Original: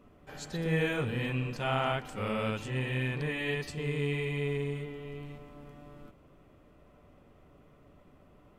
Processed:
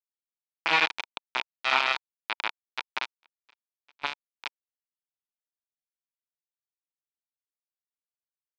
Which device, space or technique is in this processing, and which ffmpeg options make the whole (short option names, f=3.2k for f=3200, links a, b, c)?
hand-held game console: -filter_complex "[0:a]acrusher=bits=3:mix=0:aa=0.000001,highpass=440,equalizer=f=500:t=q:w=4:g=-7,equalizer=f=930:t=q:w=4:g=8,equalizer=f=1.4k:t=q:w=4:g=5,equalizer=f=2.4k:t=q:w=4:g=9,equalizer=f=3.6k:t=q:w=4:g=4,lowpass=f=4.6k:w=0.5412,lowpass=f=4.6k:w=1.3066,asettb=1/sr,asplit=3[a][b][c];[a]atrim=end=3.114[d];[b]atrim=start=3.11:end=4.24,asetpts=PTS-STARTPTS,afade=t=in:d=0.004:c=qsin,afade=t=out:st=1.126:d=0.004:c=qsin,agate=range=-30dB:threshold=-30dB:ratio=16:detection=peak[e];[c]atrim=start=4.236[f];[d][e]acrossfade=d=0.004:c1=hsin:c2=qsin[g];[g][f]acrossfade=d=0.004:c1=qsin:c2=hsin,volume=3dB"